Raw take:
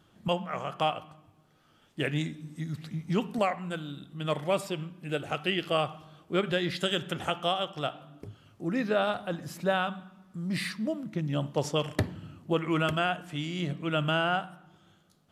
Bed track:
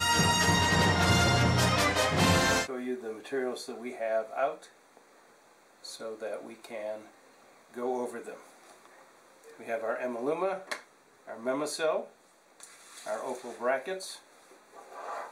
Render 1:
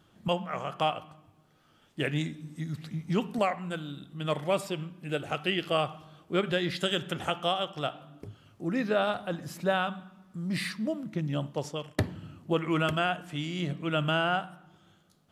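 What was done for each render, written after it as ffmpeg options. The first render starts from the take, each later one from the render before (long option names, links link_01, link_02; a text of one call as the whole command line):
ffmpeg -i in.wav -filter_complex "[0:a]asplit=2[link_01][link_02];[link_01]atrim=end=11.98,asetpts=PTS-STARTPTS,afade=type=out:start_time=11.25:duration=0.73:silence=0.188365[link_03];[link_02]atrim=start=11.98,asetpts=PTS-STARTPTS,afade=type=in:duration=0.004:curve=hsin:silence=0.188365[link_04];[link_03][link_04]concat=n=2:v=0:a=1" out.wav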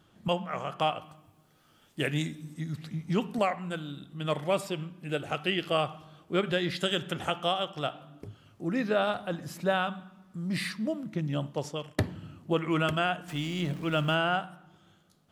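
ffmpeg -i in.wav -filter_complex "[0:a]asettb=1/sr,asplit=3[link_01][link_02][link_03];[link_01]atrim=end=1.034[link_04];[link_02]atrim=start=1.03:end=2.54,asetpts=PTS-STARTPTS,afade=type=in:duration=0.004:curve=qsin,afade=type=out:start_time=1.506:duration=0.004:curve=qsin,highshelf=frequency=7100:gain=10[link_05];[link_03]atrim=start=2.536[link_06];[link_04][link_05]acrossfade=duration=0.004:curve1=hsin:curve2=qsin[link_07];[link_07][link_06]acrossfade=duration=0.004:curve1=qsin:curve2=hsin,asettb=1/sr,asplit=3[link_08][link_09][link_10];[link_08]atrim=end=13.284[link_11];[link_09]atrim=start=13.28:end=14.15,asetpts=PTS-STARTPTS,afade=type=in:duration=0.004:curve=qsin,afade=type=out:start_time=0.866:duration=0.004:curve=qsin,aeval=exprs='val(0)+0.5*0.0075*sgn(val(0))':channel_layout=same[link_12];[link_10]atrim=start=14.146[link_13];[link_11][link_12]acrossfade=duration=0.004:curve1=hsin:curve2=qsin[link_14];[link_14][link_13]acrossfade=duration=0.004:curve1=qsin:curve2=hsin" out.wav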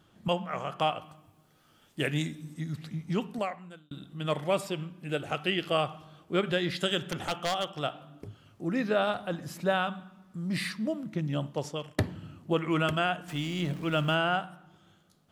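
ffmpeg -i in.wav -filter_complex "[0:a]asettb=1/sr,asplit=3[link_01][link_02][link_03];[link_01]atrim=end=7.044[link_04];[link_02]atrim=start=7.04:end=7.74,asetpts=PTS-STARTPTS,afade=type=in:duration=0.004:curve=qsin,afade=type=out:start_time=0.696:duration=0.004:curve=qsin,aeval=exprs='0.0794*(abs(mod(val(0)/0.0794+3,4)-2)-1)':channel_layout=same[link_05];[link_03]atrim=start=7.736[link_06];[link_04][link_05]acrossfade=duration=0.004:curve1=hsin:curve2=qsin[link_07];[link_07][link_06]acrossfade=duration=0.004:curve1=qsin:curve2=hsin,asplit=2[link_08][link_09];[link_08]atrim=end=3.91,asetpts=PTS-STARTPTS,afade=type=out:start_time=2.63:duration=1.28:curve=qsin[link_10];[link_09]atrim=start=3.91,asetpts=PTS-STARTPTS,afade=type=in:duration=0.004:curve=hsin[link_11];[link_10][link_11]concat=n=2:v=0:a=1" out.wav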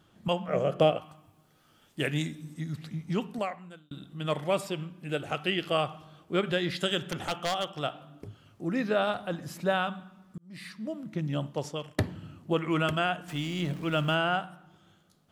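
ffmpeg -i in.wav -filter_complex "[0:a]asettb=1/sr,asplit=3[link_01][link_02][link_03];[link_01]atrim=end=0.484[link_04];[link_02]atrim=start=0.48:end=0.97,asetpts=PTS-STARTPTS,afade=type=in:duration=0.004:curve=qsin,afade=type=out:start_time=0.486:duration=0.004:curve=qsin,lowshelf=frequency=690:width_type=q:width=3:gain=8[link_05];[link_03]atrim=start=0.966[link_06];[link_04][link_05]acrossfade=duration=0.004:curve1=hsin:curve2=qsin[link_07];[link_07][link_06]acrossfade=duration=0.004:curve1=qsin:curve2=hsin,asplit=2[link_08][link_09];[link_08]atrim=end=10.38,asetpts=PTS-STARTPTS,afade=type=out:start_time=10.376:duration=0.004:curve=hsin[link_10];[link_09]atrim=start=10.38,asetpts=PTS-STARTPTS,afade=type=in:duration=0.86[link_11];[link_10][link_11]concat=n=2:v=0:a=1" out.wav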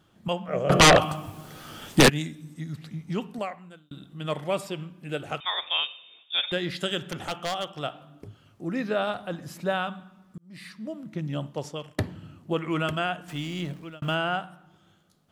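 ffmpeg -i in.wav -filter_complex "[0:a]asplit=3[link_01][link_02][link_03];[link_01]afade=type=out:start_time=0.69:duration=0.02[link_04];[link_02]aeval=exprs='0.316*sin(PI/2*7.08*val(0)/0.316)':channel_layout=same,afade=type=in:start_time=0.69:duration=0.02,afade=type=out:start_time=2.08:duration=0.02[link_05];[link_03]afade=type=in:start_time=2.08:duration=0.02[link_06];[link_04][link_05][link_06]amix=inputs=3:normalize=0,asettb=1/sr,asplit=3[link_07][link_08][link_09];[link_07]atrim=end=5.404[link_10];[link_08]atrim=start=5.4:end=6.52,asetpts=PTS-STARTPTS,afade=type=in:duration=0.004:curve=qsin,afade=type=out:start_time=1.116:duration=0.004:curve=qsin,lowpass=frequency=3200:width_type=q:width=0.5098,lowpass=frequency=3200:width_type=q:width=0.6013,lowpass=frequency=3200:width_type=q:width=0.9,lowpass=frequency=3200:width_type=q:width=2.563,afreqshift=-3800[link_11];[link_09]atrim=start=6.516[link_12];[link_10][link_11]acrossfade=duration=0.004:curve1=hsin:curve2=qsin[link_13];[link_13][link_12]acrossfade=duration=0.004:curve1=qsin:curve2=hsin,asplit=2[link_14][link_15];[link_14]atrim=end=14.02,asetpts=PTS-STARTPTS,afade=type=out:start_time=13.58:duration=0.44[link_16];[link_15]atrim=start=14.02,asetpts=PTS-STARTPTS,afade=type=in:duration=0.004:curve=hsin[link_17];[link_16][link_17]concat=n=2:v=0:a=1" out.wav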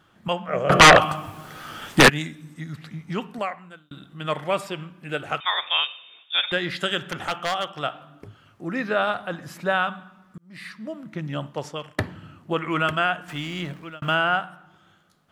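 ffmpeg -i in.wav -af "equalizer=frequency=1500:width_type=o:width=1.9:gain=8.5" out.wav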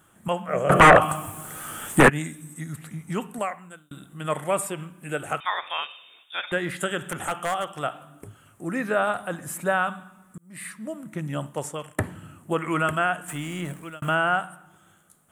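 ffmpeg -i in.wav -filter_complex "[0:a]acrossover=split=2500[link_01][link_02];[link_02]acompressor=threshold=-39dB:ratio=4:attack=1:release=60[link_03];[link_01][link_03]amix=inputs=2:normalize=0,highshelf=frequency=6500:width_type=q:width=3:gain=11.5" out.wav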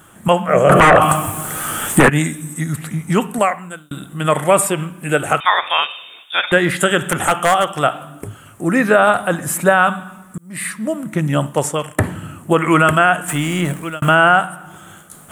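ffmpeg -i in.wav -af "areverse,acompressor=mode=upward:threshold=-45dB:ratio=2.5,areverse,alimiter=level_in=13dB:limit=-1dB:release=50:level=0:latency=1" out.wav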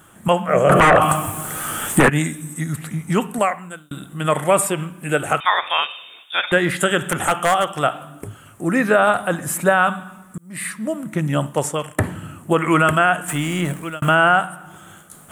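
ffmpeg -i in.wav -af "volume=-3dB" out.wav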